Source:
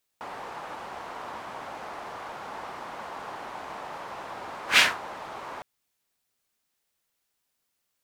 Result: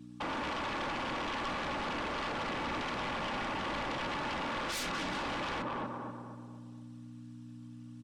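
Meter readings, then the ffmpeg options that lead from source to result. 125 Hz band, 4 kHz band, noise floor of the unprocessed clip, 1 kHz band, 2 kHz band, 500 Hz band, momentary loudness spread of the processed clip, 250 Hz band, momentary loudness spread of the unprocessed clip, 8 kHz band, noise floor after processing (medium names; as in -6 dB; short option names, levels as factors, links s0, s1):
+9.5 dB, -7.5 dB, -79 dBFS, -0.5 dB, -7.0 dB, +1.0 dB, 14 LU, +9.0 dB, 17 LU, -8.5 dB, -49 dBFS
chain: -filter_complex "[0:a]asplit=2[s0][s1];[s1]aecho=0:1:180|360|540:0.112|0.0494|0.0217[s2];[s0][s2]amix=inputs=2:normalize=0,acrossover=split=240[s3][s4];[s4]acompressor=threshold=0.00562:ratio=3[s5];[s3][s5]amix=inputs=2:normalize=0,afftfilt=real='hypot(re,im)*cos(2*PI*random(0))':imag='hypot(re,im)*sin(2*PI*random(1))':win_size=512:overlap=0.75,asoftclip=type=tanh:threshold=0.0133,lowshelf=f=270:g=9,aeval=exprs='val(0)+0.000891*(sin(2*PI*60*n/s)+sin(2*PI*2*60*n/s)/2+sin(2*PI*3*60*n/s)/3+sin(2*PI*4*60*n/s)/4+sin(2*PI*5*60*n/s)/5)':c=same,highpass=f=130:w=0.5412,highpass=f=130:w=1.3066,equalizer=f=300:t=q:w=4:g=3,equalizer=f=670:t=q:w=4:g=-5,equalizer=f=1100:t=q:w=4:g=4,equalizer=f=2100:t=q:w=4:g=-7,equalizer=f=4500:t=q:w=4:g=-5,equalizer=f=6700:t=q:w=4:g=-7,lowpass=f=7800:w=0.5412,lowpass=f=7800:w=1.3066,asplit=2[s6][s7];[s7]adelay=241,lowpass=f=1700:p=1,volume=0.668,asplit=2[s8][s9];[s9]adelay=241,lowpass=f=1700:p=1,volume=0.46,asplit=2[s10][s11];[s11]adelay=241,lowpass=f=1700:p=1,volume=0.46,asplit=2[s12][s13];[s13]adelay=241,lowpass=f=1700:p=1,volume=0.46,asplit=2[s14][s15];[s15]adelay=241,lowpass=f=1700:p=1,volume=0.46,asplit=2[s16][s17];[s17]adelay=241,lowpass=f=1700:p=1,volume=0.46[s18];[s8][s10][s12][s14][s16][s18]amix=inputs=6:normalize=0[s19];[s6][s19]amix=inputs=2:normalize=0,aeval=exprs='0.0211*sin(PI/2*5.62*val(0)/0.0211)':c=same,aecho=1:1:3.5:0.32"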